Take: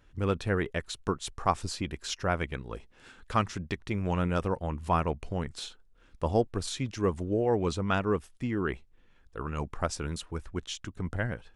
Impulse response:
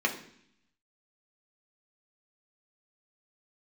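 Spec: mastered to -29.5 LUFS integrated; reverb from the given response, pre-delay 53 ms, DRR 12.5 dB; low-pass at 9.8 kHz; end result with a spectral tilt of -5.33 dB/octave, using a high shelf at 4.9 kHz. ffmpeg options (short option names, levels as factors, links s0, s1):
-filter_complex "[0:a]lowpass=9800,highshelf=f=4900:g=3.5,asplit=2[s0][s1];[1:a]atrim=start_sample=2205,adelay=53[s2];[s1][s2]afir=irnorm=-1:irlink=0,volume=0.075[s3];[s0][s3]amix=inputs=2:normalize=0,volume=1.26"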